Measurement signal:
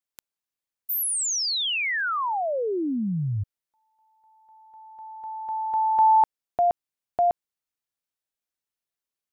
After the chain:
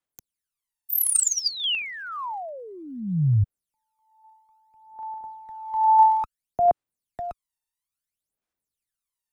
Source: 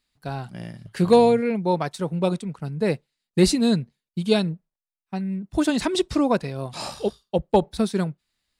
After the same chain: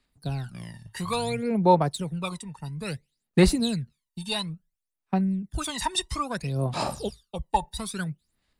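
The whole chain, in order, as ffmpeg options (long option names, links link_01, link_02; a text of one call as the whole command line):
ffmpeg -i in.wav -filter_complex "[0:a]equalizer=frequency=9900:width_type=o:width=0.84:gain=6.5,acrossover=split=140|550|2600[link_01][link_02][link_03][link_04];[link_02]acompressor=threshold=-33dB:ratio=6:release=141[link_05];[link_01][link_05][link_03][link_04]amix=inputs=4:normalize=0,aphaser=in_gain=1:out_gain=1:delay=1.1:decay=0.79:speed=0.59:type=sinusoidal,volume=-5.5dB" out.wav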